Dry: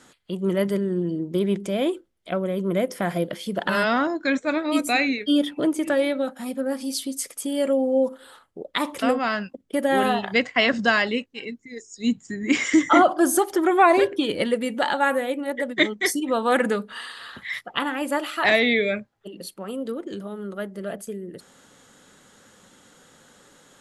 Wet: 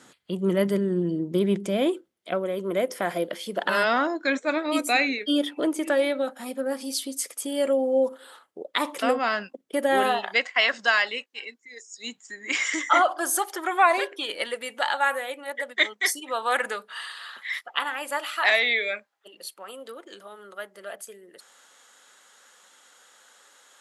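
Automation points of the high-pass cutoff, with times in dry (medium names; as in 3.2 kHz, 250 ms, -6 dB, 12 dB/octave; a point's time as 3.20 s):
1.88 s 100 Hz
2.46 s 330 Hz
9.98 s 330 Hz
10.48 s 790 Hz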